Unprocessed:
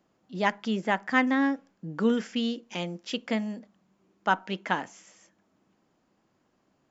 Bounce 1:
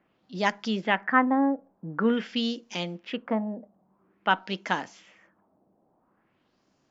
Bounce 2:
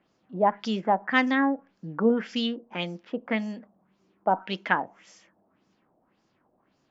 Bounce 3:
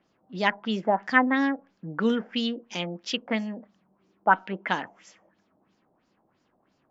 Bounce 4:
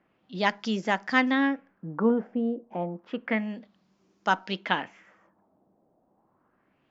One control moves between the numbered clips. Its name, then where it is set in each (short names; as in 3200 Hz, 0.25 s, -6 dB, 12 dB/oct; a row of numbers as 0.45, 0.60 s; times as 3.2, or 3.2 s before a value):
LFO low-pass, rate: 0.48, 1.8, 3, 0.3 Hz